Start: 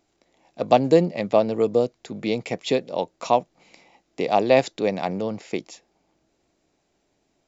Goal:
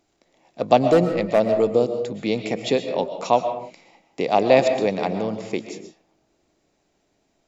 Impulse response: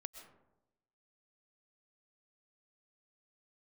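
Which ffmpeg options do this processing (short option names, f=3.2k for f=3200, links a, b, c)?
-filter_complex "[0:a]asplit=3[a][b][c];[a]afade=t=out:st=0.82:d=0.02[d];[b]asoftclip=type=hard:threshold=-11dB,afade=t=in:st=0.82:d=0.02,afade=t=out:st=1.39:d=0.02[e];[c]afade=t=in:st=1.39:d=0.02[f];[d][e][f]amix=inputs=3:normalize=0[g];[1:a]atrim=start_sample=2205,afade=t=out:st=0.37:d=0.01,atrim=end_sample=16758,asetrate=43659,aresample=44100[h];[g][h]afir=irnorm=-1:irlink=0,volume=6dB"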